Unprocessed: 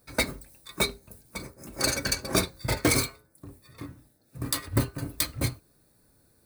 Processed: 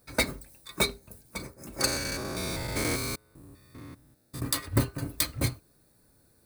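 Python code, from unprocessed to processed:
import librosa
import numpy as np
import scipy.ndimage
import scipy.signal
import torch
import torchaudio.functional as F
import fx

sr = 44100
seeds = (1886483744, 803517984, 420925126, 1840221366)

y = fx.spec_steps(x, sr, hold_ms=200, at=(1.86, 4.39), fade=0.02)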